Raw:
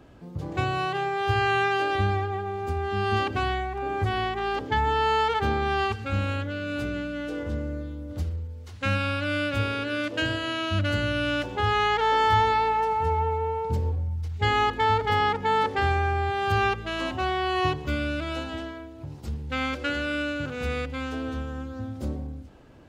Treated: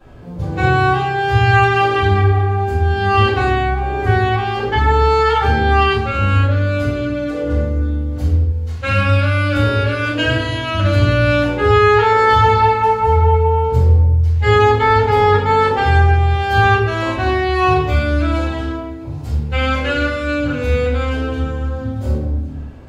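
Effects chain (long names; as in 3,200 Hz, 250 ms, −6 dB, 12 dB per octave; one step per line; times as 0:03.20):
rectangular room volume 180 cubic metres, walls mixed, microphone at 5 metres
level −5 dB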